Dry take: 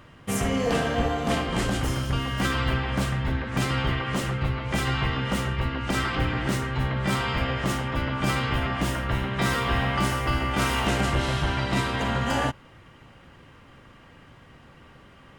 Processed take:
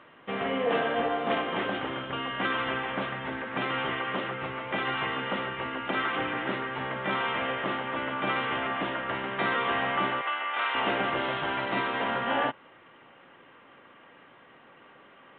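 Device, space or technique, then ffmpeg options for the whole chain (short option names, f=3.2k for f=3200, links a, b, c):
telephone: -filter_complex "[0:a]asettb=1/sr,asplit=3[a][b][c];[a]atrim=end=10.214[d];[b]atrim=start=10.21:end=10.75,asetpts=PTS-STARTPTS,afade=t=in:d=0.004:c=qsin,afade=t=out:st=0.536:d=0.004:c=qsin,highpass=820[e];[c]atrim=start=10.746[f];[d][e]acrossfade=d=0.004:c1=hsin:c2=qsin[g];[g][f]acrossfade=d=0.004:c1=qsin:c2=hsin,highpass=340,lowpass=3.1k" -ar 8000 -c:a pcm_alaw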